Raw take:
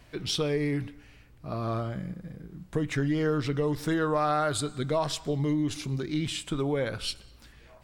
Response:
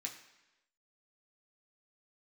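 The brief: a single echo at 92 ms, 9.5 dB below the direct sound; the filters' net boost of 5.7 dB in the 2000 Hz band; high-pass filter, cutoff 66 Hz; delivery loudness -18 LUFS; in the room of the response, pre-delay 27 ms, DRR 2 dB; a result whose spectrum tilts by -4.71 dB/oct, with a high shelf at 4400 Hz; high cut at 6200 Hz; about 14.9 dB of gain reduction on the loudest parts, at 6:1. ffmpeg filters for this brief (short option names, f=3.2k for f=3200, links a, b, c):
-filter_complex "[0:a]highpass=66,lowpass=6.2k,equalizer=f=2k:t=o:g=6.5,highshelf=f=4.4k:g=4.5,acompressor=threshold=-39dB:ratio=6,aecho=1:1:92:0.335,asplit=2[a][b];[1:a]atrim=start_sample=2205,adelay=27[c];[b][c]afir=irnorm=-1:irlink=0,volume=0dB[d];[a][d]amix=inputs=2:normalize=0,volume=22dB"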